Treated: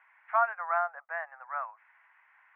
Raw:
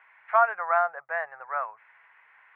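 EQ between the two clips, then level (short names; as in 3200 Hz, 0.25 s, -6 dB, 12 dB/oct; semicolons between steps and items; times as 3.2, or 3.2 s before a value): HPF 680 Hz 24 dB/oct; air absorption 280 m; -3.0 dB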